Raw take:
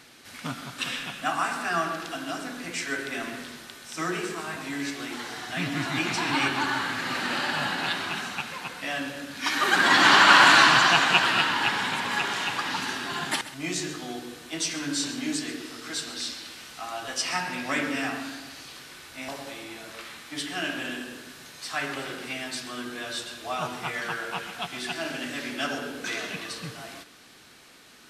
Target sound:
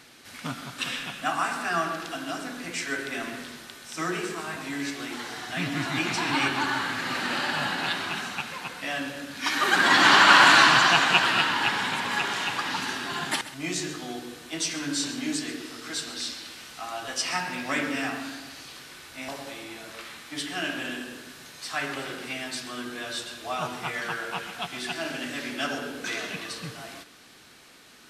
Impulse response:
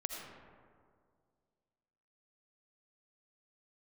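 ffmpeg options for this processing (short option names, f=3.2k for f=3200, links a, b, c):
-filter_complex "[0:a]asettb=1/sr,asplit=3[a][b][c];[a]atrim=end=17.364[d];[b]atrim=start=17.36:end=18.23,asetpts=PTS-STARTPTS,afade=t=in:d=0.004:c=qsin,afade=t=out:st=0.866:d=0.004:c=qsin,aeval=exprs='sgn(val(0))*max(abs(val(0))-0.00133,0)':c=same[e];[c]atrim=start=18.226[f];[d][e]acrossfade=d=0.004:c1=hsin:c2=qsin[g];[g][f]acrossfade=d=0.004:c1=qsin:c2=hsin"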